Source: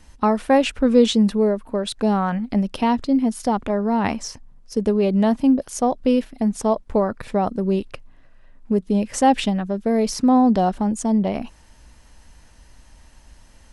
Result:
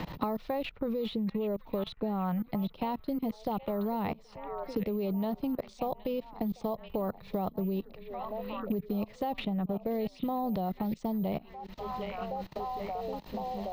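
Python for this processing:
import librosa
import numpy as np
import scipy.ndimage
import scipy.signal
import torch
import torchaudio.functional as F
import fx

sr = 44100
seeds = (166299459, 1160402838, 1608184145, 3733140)

p1 = fx.graphic_eq_31(x, sr, hz=(160, 250, 1600, 4000, 6300), db=(10, -9, -10, 9, -9))
p2 = (np.kron(p1[::3], np.eye(3)[0]) * 3)[:len(p1)]
p3 = p2 + fx.echo_stepped(p2, sr, ms=772, hz=2600.0, octaves=-0.7, feedback_pct=70, wet_db=-9.0, dry=0)
p4 = fx.level_steps(p3, sr, step_db=22)
p5 = fx.air_absorb(p4, sr, metres=190.0)
p6 = fx.band_squash(p5, sr, depth_pct=100)
y = F.gain(torch.from_numpy(p6), -4.0).numpy()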